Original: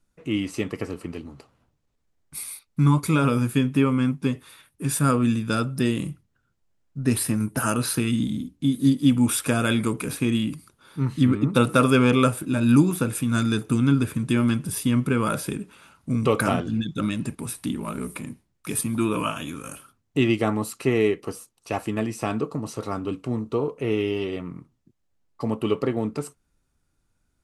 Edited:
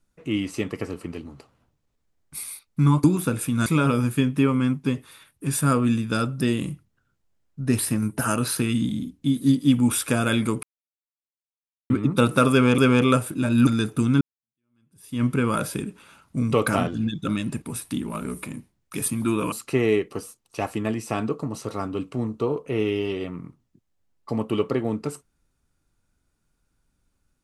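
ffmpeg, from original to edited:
ffmpeg -i in.wav -filter_complex "[0:a]asplit=9[link_01][link_02][link_03][link_04][link_05][link_06][link_07][link_08][link_09];[link_01]atrim=end=3.042[link_10];[link_02]atrim=start=12.778:end=13.402[link_11];[link_03]atrim=start=3.038:end=10.01,asetpts=PTS-STARTPTS,afade=type=out:start_time=6.968:duration=0.004:curve=hsin[link_12];[link_04]atrim=start=10.01:end=11.28,asetpts=PTS-STARTPTS,volume=0[link_13];[link_05]atrim=start=11.28:end=12.162,asetpts=PTS-STARTPTS,afade=type=in:duration=0.004:curve=hsin[link_14];[link_06]atrim=start=11.888:end=12.782[link_15];[link_07]atrim=start=13.398:end=13.94,asetpts=PTS-STARTPTS,afade=type=out:start_time=0.538:duration=0.004:curve=hsin[link_16];[link_08]atrim=start=13.94:end=19.252,asetpts=PTS-STARTPTS,afade=type=in:duration=1.02:curve=exp[link_17];[link_09]atrim=start=20.638[link_18];[link_10][link_11]acrossfade=duration=0.004:curve1=hsin:curve2=hsin[link_19];[link_12][link_13][link_14]concat=n=3:v=0:a=1[link_20];[link_19][link_20]acrossfade=duration=0.004:curve1=hsin:curve2=hsin[link_21];[link_21][link_15]acrossfade=duration=0.004:curve1=hsin:curve2=hsin[link_22];[link_16][link_17]concat=n=2:v=0:a=1[link_23];[link_22][link_23]acrossfade=duration=0.004:curve1=hsin:curve2=hsin[link_24];[link_24][link_18]acrossfade=duration=0.004:curve1=hsin:curve2=hsin" out.wav

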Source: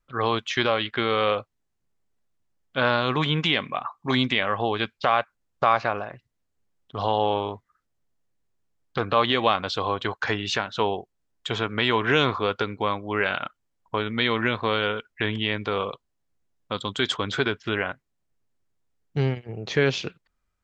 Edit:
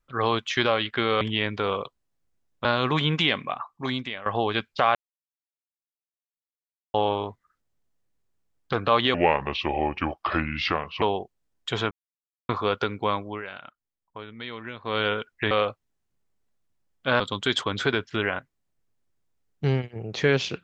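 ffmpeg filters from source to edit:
ffmpeg -i in.wav -filter_complex "[0:a]asplit=14[link_01][link_02][link_03][link_04][link_05][link_06][link_07][link_08][link_09][link_10][link_11][link_12][link_13][link_14];[link_01]atrim=end=1.212[link_15];[link_02]atrim=start=15.288:end=16.732[link_16];[link_03]atrim=start=2.898:end=4.51,asetpts=PTS-STARTPTS,afade=type=out:start_time=0.702:duration=0.91:silence=0.16788[link_17];[link_04]atrim=start=4.51:end=5.2,asetpts=PTS-STARTPTS,afade=type=in:duration=0.004:curve=hsin:silence=0.16788,afade=type=out:start_time=0.686:duration=0.004:curve=hsin[link_18];[link_05]atrim=start=5.2:end=7.19,asetpts=PTS-STARTPTS,volume=0[link_19];[link_06]atrim=start=7.19:end=9.394,asetpts=PTS-STARTPTS,afade=type=in:duration=0.004:curve=hsin[link_20];[link_07]atrim=start=9.39:end=10.8,asetpts=PTS-STARTPTS,asetrate=33075,aresample=44100[link_21];[link_08]atrim=start=10.796:end=11.69,asetpts=PTS-STARTPTS,afade=type=out:start_time=0.89:duration=0.004:curve=hsin[link_22];[link_09]atrim=start=11.69:end=12.27,asetpts=PTS-STARTPTS,volume=0[link_23];[link_10]atrim=start=12.27:end=13.2,asetpts=PTS-STARTPTS,afade=type=in:duration=0.004:curve=hsin,afade=type=out:start_time=0.74:duration=0.19:silence=0.211349[link_24];[link_11]atrim=start=13.2:end=14.6,asetpts=PTS-STARTPTS,volume=-13.5dB[link_25];[link_12]atrim=start=14.6:end=15.292,asetpts=PTS-STARTPTS,afade=type=in:duration=0.19:silence=0.211349[link_26];[link_13]atrim=start=1.208:end=2.902[link_27];[link_14]atrim=start=16.728[link_28];[link_15][link_16]acrossfade=duration=0.004:curve1=hsin:curve2=hsin[link_29];[link_17][link_18][link_19][link_20]concat=n=4:v=0:a=1[link_30];[link_29][link_30]acrossfade=duration=0.004:curve1=hsin:curve2=hsin[link_31];[link_31][link_21]acrossfade=duration=0.004:curve1=hsin:curve2=hsin[link_32];[link_22][link_23][link_24][link_25][link_26]concat=n=5:v=0:a=1[link_33];[link_32][link_33]acrossfade=duration=0.004:curve1=hsin:curve2=hsin[link_34];[link_34][link_27]acrossfade=duration=0.004:curve1=hsin:curve2=hsin[link_35];[link_35][link_28]acrossfade=duration=0.004:curve1=hsin:curve2=hsin" out.wav

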